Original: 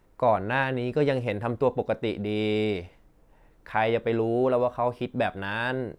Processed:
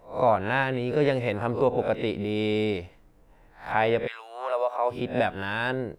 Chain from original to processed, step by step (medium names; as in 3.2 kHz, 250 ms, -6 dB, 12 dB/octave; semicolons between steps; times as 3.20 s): reverse spectral sustain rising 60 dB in 0.36 s; 4.06–4.90 s: high-pass 1.3 kHz -> 360 Hz 24 dB/octave